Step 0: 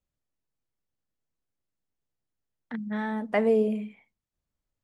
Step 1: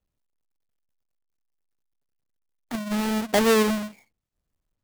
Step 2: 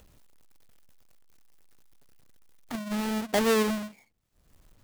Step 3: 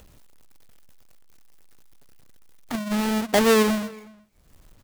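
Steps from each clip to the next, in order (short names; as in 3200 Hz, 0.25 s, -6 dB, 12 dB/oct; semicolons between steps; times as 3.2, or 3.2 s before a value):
half-waves squared off
upward compressor, threshold -32 dBFS; gain -4.5 dB
outdoor echo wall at 63 m, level -24 dB; gain +6 dB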